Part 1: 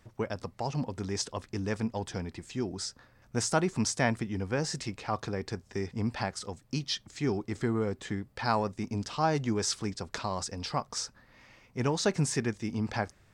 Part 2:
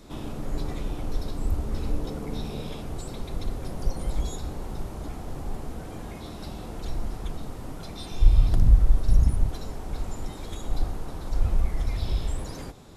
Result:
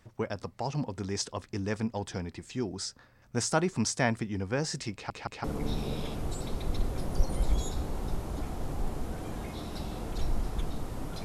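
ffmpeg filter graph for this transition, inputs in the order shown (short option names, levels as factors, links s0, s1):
-filter_complex "[0:a]apad=whole_dur=11.24,atrim=end=11.24,asplit=3[s0][s1][s2];[s0]atrim=end=5.102[s3];[s1]atrim=start=4.928:end=5.102[s4];[s2]atrim=start=4.928:end=5.102[s5];[1:a]atrim=start=2.108:end=7.91[s6];[s3][s4]acrossfade=d=0.004:c1=hsin:c2=hsin[s7];[s7][s5]acrossfade=d=0.004:c1=hsin:c2=hsin[s8];[s8][s6]acrossfade=d=0.004:c1=hsin:c2=hsin"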